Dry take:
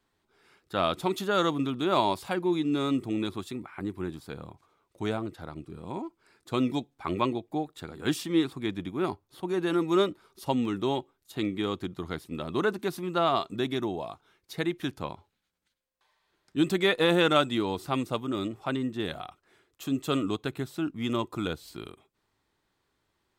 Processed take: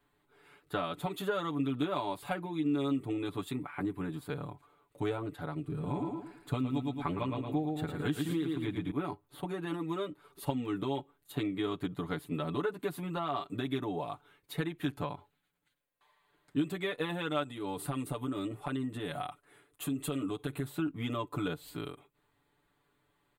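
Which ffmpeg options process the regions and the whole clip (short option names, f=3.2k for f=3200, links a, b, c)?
-filter_complex "[0:a]asettb=1/sr,asplit=3[a][b][c];[a]atrim=end=5.644[d];[b]atrim=start=5.64:end=8.91,asetpts=PTS-STARTPTS,afade=t=in:d=0.004:c=qsin,afade=t=out:st=3.266:d=0.004:c=qsin,lowshelf=f=160:g=8,aecho=1:1:111|222|333|444:0.531|0.175|0.0578|0.0191,atrim=end_sample=144207[e];[c]atrim=start=8.906[f];[d][e]acrossfade=d=0.004:c1=hsin:c2=qsin[g];[g][f]acrossfade=d=0.004:c1=qsin:c2=hsin,asettb=1/sr,asplit=3[h][i][j];[h]atrim=end=17.434[k];[i]atrim=start=17.43:end=20.67,asetpts=PTS-STARTPTS,afade=t=in:d=0.004:c=qsin,afade=t=out:st=3.236:d=0.004:c=qsin,equalizer=f=9.8k:t=o:w=0.41:g=11,acompressor=threshold=-33dB:ratio=10:attack=3.2:release=140:knee=1:detection=peak[l];[j]atrim=start=20.666[m];[k][l]acrossfade=d=0.004:c1=hsin:c2=qsin[n];[n][m]acrossfade=d=0.004:c1=qsin:c2=hsin,equalizer=f=5.5k:t=o:w=0.63:g=-14,acompressor=threshold=-32dB:ratio=10,aecho=1:1:6.9:0.89"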